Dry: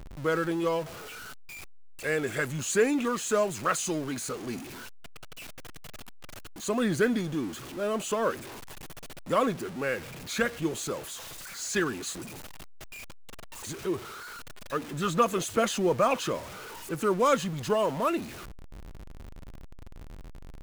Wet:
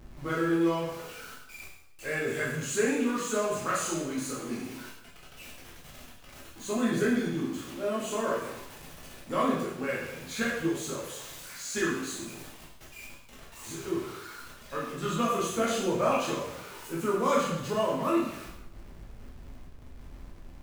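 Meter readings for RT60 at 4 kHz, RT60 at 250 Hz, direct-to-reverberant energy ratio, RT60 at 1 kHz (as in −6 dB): 0.75 s, 0.85 s, −6.5 dB, 0.80 s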